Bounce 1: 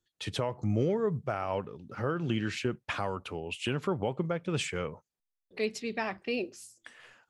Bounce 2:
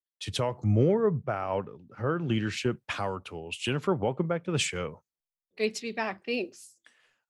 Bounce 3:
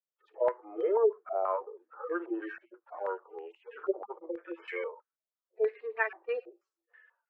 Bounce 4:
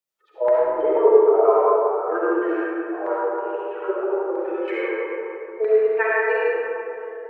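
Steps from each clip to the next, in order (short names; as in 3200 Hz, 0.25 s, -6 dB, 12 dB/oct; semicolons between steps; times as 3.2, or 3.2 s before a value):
three-band expander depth 70%; gain +2.5 dB
median-filter separation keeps harmonic; rippled Chebyshev high-pass 330 Hz, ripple 3 dB; stepped low-pass 6.2 Hz 640–2000 Hz
reverb RT60 3.2 s, pre-delay 25 ms, DRR -7 dB; gain +5 dB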